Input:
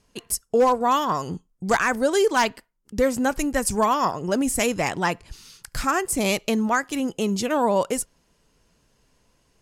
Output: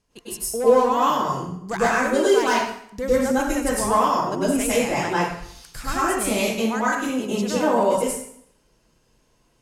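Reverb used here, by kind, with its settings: plate-style reverb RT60 0.69 s, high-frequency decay 0.85×, pre-delay 90 ms, DRR -9 dB; trim -8.5 dB

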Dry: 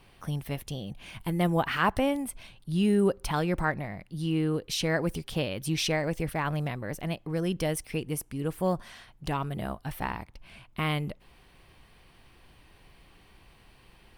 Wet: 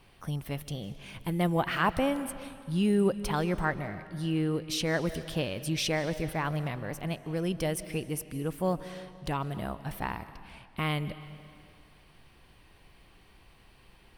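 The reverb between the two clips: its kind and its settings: algorithmic reverb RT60 2.2 s, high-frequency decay 0.85×, pre-delay 115 ms, DRR 13.5 dB; trim -1.5 dB

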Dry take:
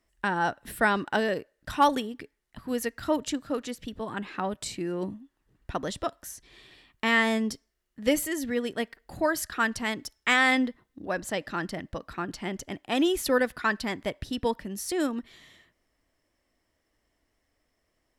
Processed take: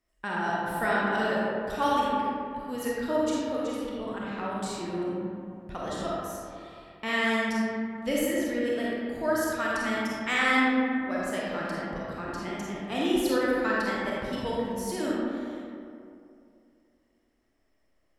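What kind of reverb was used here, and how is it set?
algorithmic reverb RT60 2.6 s, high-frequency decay 0.4×, pre-delay 5 ms, DRR -6.5 dB; trim -7.5 dB

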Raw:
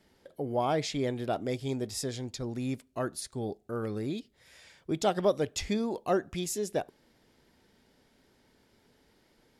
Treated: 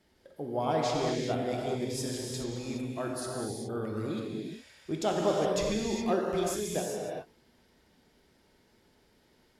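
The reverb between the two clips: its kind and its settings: gated-style reverb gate 440 ms flat, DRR -2 dB; trim -3.5 dB

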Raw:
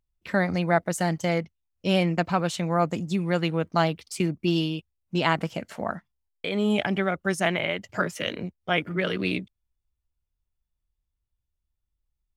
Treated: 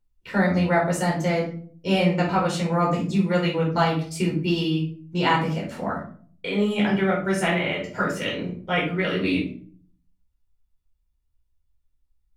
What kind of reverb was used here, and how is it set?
simulated room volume 410 m³, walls furnished, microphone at 4.6 m; trim -5 dB

